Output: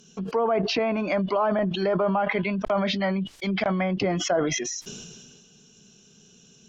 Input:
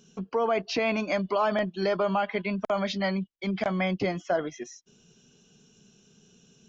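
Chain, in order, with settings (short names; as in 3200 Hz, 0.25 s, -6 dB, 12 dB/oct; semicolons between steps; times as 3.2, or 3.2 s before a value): high shelf 3300 Hz +6.5 dB; treble ducked by the level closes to 1300 Hz, closed at -21.5 dBFS; sustainer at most 31 dB/s; gain +2 dB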